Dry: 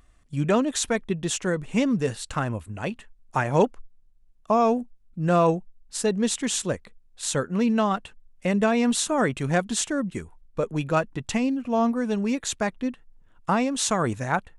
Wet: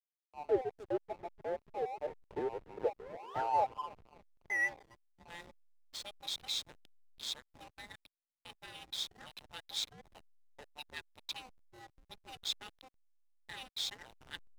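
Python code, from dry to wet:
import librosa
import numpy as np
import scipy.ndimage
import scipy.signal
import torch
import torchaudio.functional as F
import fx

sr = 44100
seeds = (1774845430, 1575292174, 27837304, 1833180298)

y = fx.band_invert(x, sr, width_hz=1000)
y = fx.low_shelf_res(y, sr, hz=140.0, db=7.5, q=1.5)
y = fx.rider(y, sr, range_db=4, speed_s=0.5)
y = 10.0 ** (-13.0 / 20.0) * np.tanh(y / 10.0 ** (-13.0 / 20.0))
y = fx.filter_sweep_bandpass(y, sr, from_hz=400.0, to_hz=3800.0, start_s=2.65, end_s=5.46, q=5.3)
y = fx.spec_paint(y, sr, seeds[0], shape='rise', start_s=2.99, length_s=0.43, low_hz=420.0, high_hz=1500.0, level_db=-45.0)
y = fx.echo_tape(y, sr, ms=285, feedback_pct=76, wet_db=-16, lp_hz=2100.0, drive_db=17.0, wow_cents=7)
y = fx.backlash(y, sr, play_db=-40.0)
y = y * 10.0 ** (1.0 / 20.0)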